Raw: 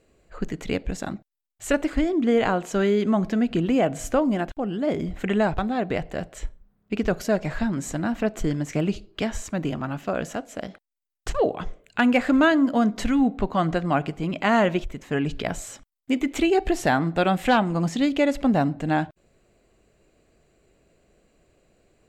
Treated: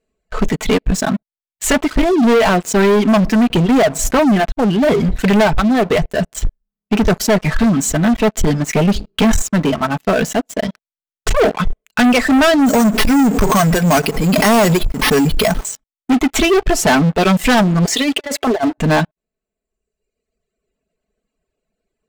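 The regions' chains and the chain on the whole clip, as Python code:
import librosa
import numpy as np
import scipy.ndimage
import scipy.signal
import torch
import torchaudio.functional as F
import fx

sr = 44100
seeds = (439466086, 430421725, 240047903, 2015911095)

y = fx.chain(x, sr, fx.peak_eq(hz=170.0, db=6.5, octaves=2.0),
    fx.sustainer(db_per_s=71.0), at=(8.93, 9.42))
y = fx.chain(y, sr, fx.resample_bad(factor=6, down='none', up='hold'),
    fx.pre_swell(db_per_s=49.0), at=(12.66, 15.65))
y = fx.chain(y, sr, fx.cheby1_highpass(hz=330.0, order=4),
    fx.over_compress(threshold_db=-28.0, ratio=-0.5), at=(17.85, 18.78))
y = fx.dereverb_blind(y, sr, rt60_s=1.9)
y = y + 0.59 * np.pad(y, (int(4.6 * sr / 1000.0), 0))[:len(y)]
y = fx.leveller(y, sr, passes=5)
y = F.gain(torch.from_numpy(y), -2.0).numpy()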